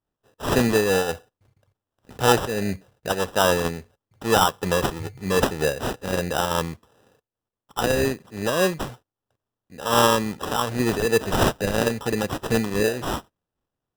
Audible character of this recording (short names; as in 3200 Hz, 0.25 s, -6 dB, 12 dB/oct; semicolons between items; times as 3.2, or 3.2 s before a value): aliases and images of a low sample rate 2200 Hz, jitter 0%; noise-modulated level